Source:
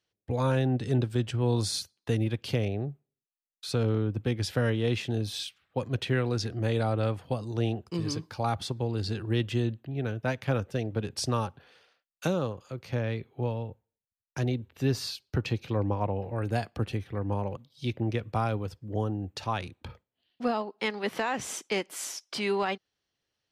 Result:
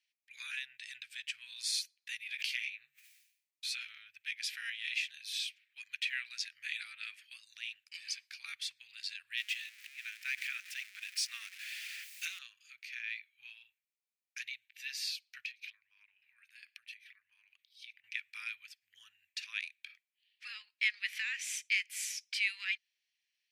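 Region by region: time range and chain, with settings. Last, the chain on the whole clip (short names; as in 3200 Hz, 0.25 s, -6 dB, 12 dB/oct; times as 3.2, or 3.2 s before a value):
2.27–3.88 doubler 16 ms -4 dB + sustainer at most 100 dB/s
9.37–12.39 zero-crossing step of -37 dBFS + Chebyshev high-pass 860 Hz
15.45–18.04 bell 7300 Hz -6.5 dB 0.32 oct + compressor 10:1, threshold -39 dBFS
whole clip: elliptic high-pass 1800 Hz, stop band 60 dB; bell 2400 Hz +10.5 dB 0.32 oct; gain -2 dB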